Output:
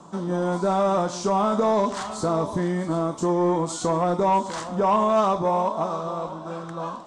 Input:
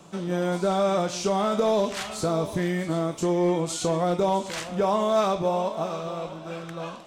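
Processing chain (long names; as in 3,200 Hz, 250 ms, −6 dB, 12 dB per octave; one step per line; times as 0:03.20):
graphic EQ with 15 bands 250 Hz +6 dB, 1,000 Hz +10 dB, 2,500 Hz −10 dB
soft clipping −12 dBFS, distortion −21 dB
Chebyshev low-pass filter 8,600 Hz, order 3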